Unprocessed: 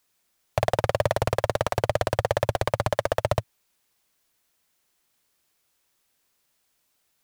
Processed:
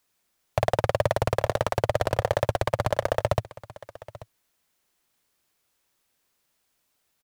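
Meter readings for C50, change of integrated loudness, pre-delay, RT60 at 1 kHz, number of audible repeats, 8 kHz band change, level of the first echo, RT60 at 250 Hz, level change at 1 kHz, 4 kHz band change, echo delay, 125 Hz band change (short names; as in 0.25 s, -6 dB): none, -0.5 dB, none, none, 1, -2.0 dB, -18.5 dB, none, -0.5 dB, -1.5 dB, 0.836 s, 0.0 dB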